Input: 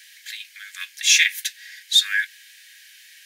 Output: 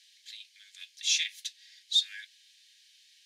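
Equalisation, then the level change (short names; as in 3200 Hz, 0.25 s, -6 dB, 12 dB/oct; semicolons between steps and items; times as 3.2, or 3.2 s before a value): ladder band-pass 4700 Hz, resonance 30%; 0.0 dB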